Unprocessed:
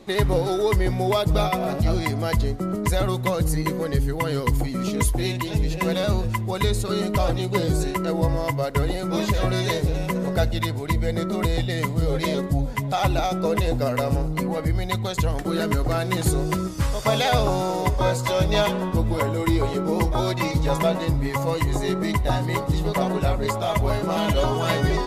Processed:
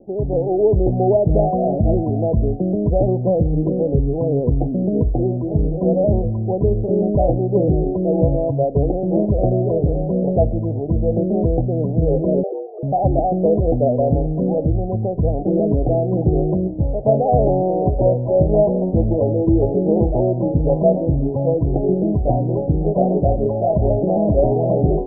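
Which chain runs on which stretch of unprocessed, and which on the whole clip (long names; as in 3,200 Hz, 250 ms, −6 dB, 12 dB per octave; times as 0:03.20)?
0:12.43–0:12.83: spectral envelope exaggerated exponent 1.5 + high-pass filter 220 Hz 24 dB per octave + frequency shifter +210 Hz
whole clip: Butterworth low-pass 750 Hz 72 dB per octave; low-shelf EQ 140 Hz −6 dB; automatic gain control gain up to 7 dB; level +1.5 dB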